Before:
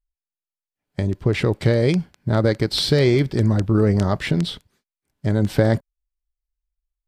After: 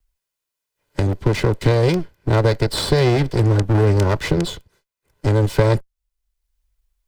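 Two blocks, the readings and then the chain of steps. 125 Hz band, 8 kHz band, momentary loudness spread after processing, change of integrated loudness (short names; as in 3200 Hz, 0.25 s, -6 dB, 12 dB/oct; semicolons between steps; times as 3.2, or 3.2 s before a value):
+3.0 dB, +4.0 dB, 7 LU, +1.5 dB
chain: minimum comb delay 2 ms; three-band squash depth 40%; gain +2 dB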